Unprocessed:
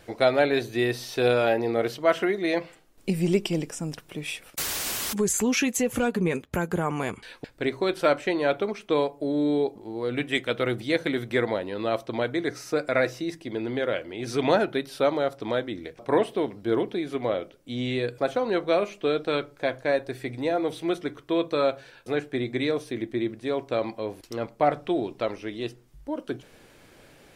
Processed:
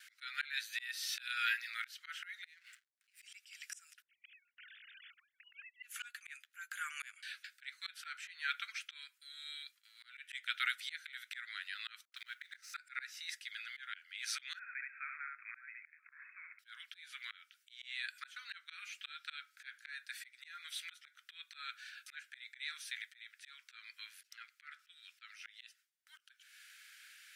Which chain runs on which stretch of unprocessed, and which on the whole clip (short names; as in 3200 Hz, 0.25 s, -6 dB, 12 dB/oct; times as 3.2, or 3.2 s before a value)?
2.45–3.22 bell 150 Hz -8 dB 0.59 oct + compressor 20:1, threshold -36 dBFS + backlash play -51.5 dBFS
4.02–5.83 sine-wave speech + LPF 2100 Hz + differentiator
12.05–12.74 G.711 law mismatch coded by A + dispersion highs, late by 73 ms, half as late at 380 Hz
14.59–16.59 compressor 3:1, threshold -27 dBFS + brick-wall FIR low-pass 2600 Hz + echo 71 ms -4 dB
24.33–24.79 HPF 1200 Hz + high shelf 3300 Hz -5.5 dB
whole clip: steep high-pass 1400 Hz 72 dB/oct; gate with hold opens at -53 dBFS; auto swell 0.317 s